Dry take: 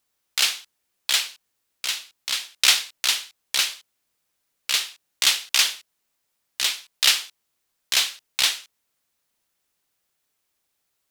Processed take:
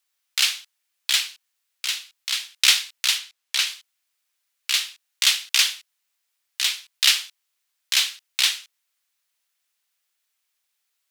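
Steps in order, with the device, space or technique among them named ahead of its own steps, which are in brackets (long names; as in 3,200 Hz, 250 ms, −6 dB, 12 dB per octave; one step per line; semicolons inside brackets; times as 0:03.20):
filter by subtraction (in parallel: low-pass filter 2,300 Hz 12 dB per octave + polarity inversion)
0:03.18–0:03.67: on the sum: high-shelf EQ 8,500 Hz −5.5 dB
level −1 dB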